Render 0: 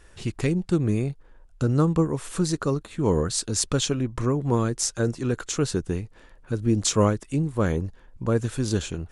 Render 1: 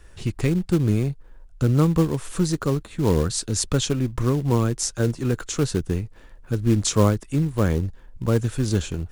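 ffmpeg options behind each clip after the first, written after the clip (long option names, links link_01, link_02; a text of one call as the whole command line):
ffmpeg -i in.wav -filter_complex "[0:a]lowshelf=frequency=150:gain=6.5,acrossover=split=280|1500[link_01][link_02][link_03];[link_02]acrusher=bits=3:mode=log:mix=0:aa=0.000001[link_04];[link_01][link_04][link_03]amix=inputs=3:normalize=0" out.wav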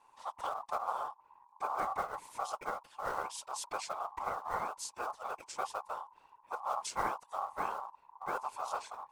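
ffmpeg -i in.wav -af "afftfilt=real='hypot(re,im)*cos(2*PI*random(0))':imag='hypot(re,im)*sin(2*PI*random(1))':win_size=512:overlap=0.75,aeval=exprs='val(0)*sin(2*PI*960*n/s)':channel_layout=same,volume=-8dB" out.wav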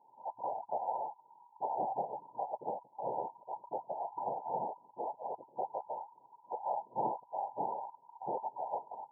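ffmpeg -i in.wav -af "afftfilt=real='re*between(b*sr/4096,110,1000)':imag='im*between(b*sr/4096,110,1000)':win_size=4096:overlap=0.75,volume=3dB" out.wav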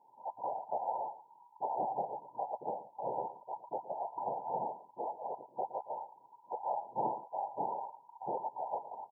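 ffmpeg -i in.wav -af "aecho=1:1:116:0.188" out.wav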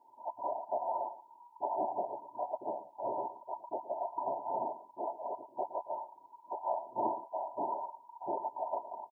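ffmpeg -i in.wav -af "aecho=1:1:3.1:0.77" out.wav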